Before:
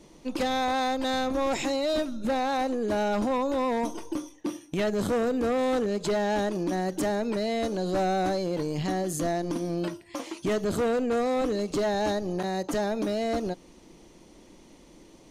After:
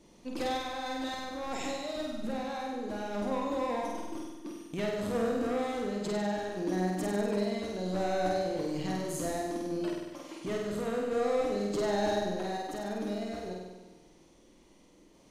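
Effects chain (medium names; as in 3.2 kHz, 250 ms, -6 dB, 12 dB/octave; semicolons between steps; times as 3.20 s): random-step tremolo; flutter echo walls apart 8.4 m, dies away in 1.2 s; trim -6.5 dB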